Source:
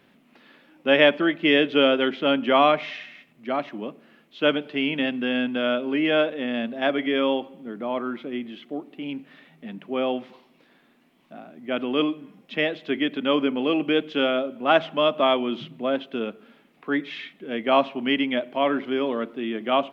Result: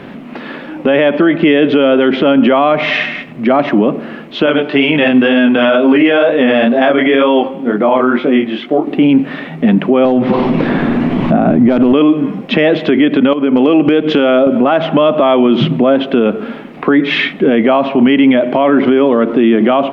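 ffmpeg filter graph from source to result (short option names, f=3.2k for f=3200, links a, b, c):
-filter_complex "[0:a]asettb=1/sr,asplit=3[a][b][c];[a]atrim=end=4.464[d];[b]atrim=start=4.46:end=8.87,asetpts=PTS-STARTPTS,afade=t=in:d=0.004:c=qsin,afade=t=out:st=4.406:d=0.004:c=qsin,flanger=delay=19:depth=4.6:speed=2.1,lowshelf=f=370:g=-8.5[e];[c]atrim=start=8.866[f];[d][e]acrossfade=d=0.004:c1=hsin:c2=qsin[g];[g][f]acrossfade=d=0.004:c1=qsin:c2=hsin,asettb=1/sr,asplit=3[h][i][j];[h]atrim=end=10.054[k];[i]atrim=start=10.05:end=11.93,asetpts=PTS-STARTPTS,afade=t=in:d=0.004:c=qsin,afade=t=out:st=1.876:d=0.004:c=qsin,aemphasis=mode=reproduction:type=bsi,acompressor=mode=upward:threshold=-27dB:ratio=2.5:attack=3.2:release=140:knee=2.83:detection=peak,aeval=exprs='clip(val(0),-1,0.0794)':c=same[l];[j]atrim=start=11.926[m];[k][l]acrossfade=d=0.004:c1=hsin:c2=qsin[n];[n][m]acrossfade=d=0.004:c1=qsin:c2=hsin,asettb=1/sr,asplit=3[o][p][q];[o]atrim=end=13.334[r];[p]atrim=start=13.33:end=14.47,asetpts=PTS-STARTPTS,afade=t=in:d=0.004:c=qsin,afade=t=out:st=1.136:d=0.004:c=qsin,acompressor=threshold=-34dB:ratio=10:attack=3.2:release=140:knee=1:detection=peak,asoftclip=type=hard:threshold=-29dB[s];[q]atrim=start=14.466[t];[r][s]acrossfade=d=0.004:c1=hsin:c2=qsin[u];[u][t]acrossfade=d=0.004:c1=qsin:c2=hsin,lowpass=f=1.2k:p=1,acompressor=threshold=-30dB:ratio=3,alimiter=level_in=31dB:limit=-1dB:release=50:level=0:latency=1,volume=-1dB"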